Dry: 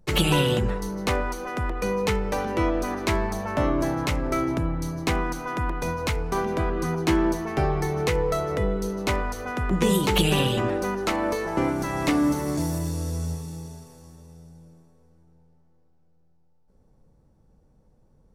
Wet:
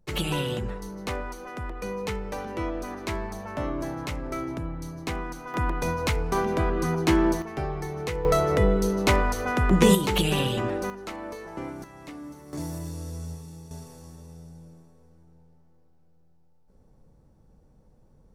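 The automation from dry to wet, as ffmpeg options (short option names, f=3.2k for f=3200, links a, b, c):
-af "asetnsamples=n=441:p=0,asendcmd='5.54 volume volume 0.5dB;7.42 volume volume -7dB;8.25 volume volume 4dB;9.95 volume volume -3dB;10.9 volume volume -11.5dB;11.84 volume volume -19dB;12.53 volume volume -7dB;13.71 volume volume 2dB',volume=-7dB"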